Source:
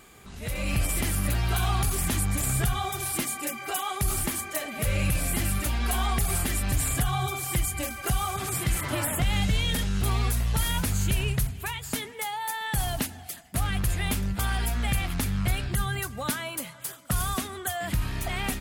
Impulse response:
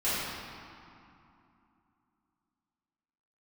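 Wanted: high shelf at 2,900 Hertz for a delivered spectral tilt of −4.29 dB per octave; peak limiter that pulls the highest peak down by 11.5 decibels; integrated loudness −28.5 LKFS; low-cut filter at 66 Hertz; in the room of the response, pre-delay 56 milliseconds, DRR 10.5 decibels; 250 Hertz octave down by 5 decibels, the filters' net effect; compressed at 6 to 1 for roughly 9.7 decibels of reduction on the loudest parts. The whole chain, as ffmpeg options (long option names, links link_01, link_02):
-filter_complex "[0:a]highpass=66,equalizer=frequency=250:width_type=o:gain=-7.5,highshelf=frequency=2900:gain=-8,acompressor=threshold=-35dB:ratio=6,alimiter=level_in=8.5dB:limit=-24dB:level=0:latency=1,volume=-8.5dB,asplit=2[link_01][link_02];[1:a]atrim=start_sample=2205,adelay=56[link_03];[link_02][link_03]afir=irnorm=-1:irlink=0,volume=-21.5dB[link_04];[link_01][link_04]amix=inputs=2:normalize=0,volume=12.5dB"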